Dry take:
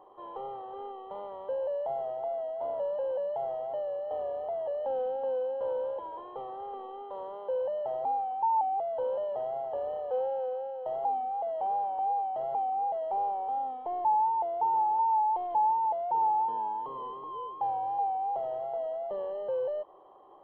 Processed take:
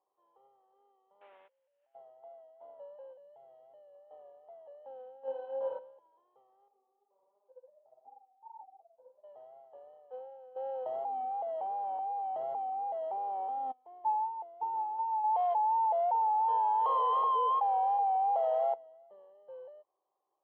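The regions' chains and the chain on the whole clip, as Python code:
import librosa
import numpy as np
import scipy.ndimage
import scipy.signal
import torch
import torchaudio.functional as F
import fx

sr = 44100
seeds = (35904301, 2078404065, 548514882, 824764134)

y = fx.chain(x, sr, fx.delta_mod(bps=16000, step_db=-36.5),
    fx.highpass(hz=330.0, slope=12),
    fx.over_compress(threshold_db=-40.0, ratio=-0.5), at=(1.21, 1.95))
y = fx.chain(y, sr, fx.peak_eq(hz=990.0, db=-7.0, octaves=1.6),
    fx.env_flatten(amount_pct=70), at=(3.13, 3.95))
y = fx.chain(y, sr, fx.highpass(hz=89.0, slope=12),
    fx.room_flutter(wall_m=4.5, rt60_s=0.54),
    fx.env_flatten(amount_pct=50), at=(5.25, 5.79))
y = fx.chain(y, sr, fx.bessel_lowpass(hz=790.0, order=2),
    fx.low_shelf(hz=130.0, db=-3.5),
    fx.detune_double(cents=50), at=(6.68, 9.24))
y = fx.chain(y, sr, fx.peak_eq(hz=260.0, db=3.5, octaves=0.43),
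    fx.env_flatten(amount_pct=100), at=(10.56, 13.72))
y = fx.chain(y, sr, fx.brickwall_highpass(low_hz=430.0),
    fx.env_flatten(amount_pct=100), at=(15.24, 18.74))
y = fx.highpass(y, sr, hz=780.0, slope=6)
y = fx.tilt_eq(y, sr, slope=-2.0)
y = fx.upward_expand(y, sr, threshold_db=-42.0, expansion=2.5)
y = y * 10.0 ** (-1.0 / 20.0)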